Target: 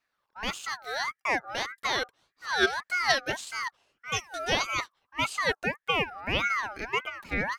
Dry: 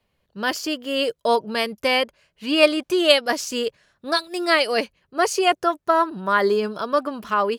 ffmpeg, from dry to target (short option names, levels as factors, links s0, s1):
-filter_complex "[0:a]acrossover=split=7500[s0][s1];[s1]acompressor=threshold=0.00631:ratio=4:attack=1:release=60[s2];[s0][s2]amix=inputs=2:normalize=0,aeval=exprs='val(0)*sin(2*PI*1400*n/s+1400*0.3/1.7*sin(2*PI*1.7*n/s))':c=same,volume=0.501"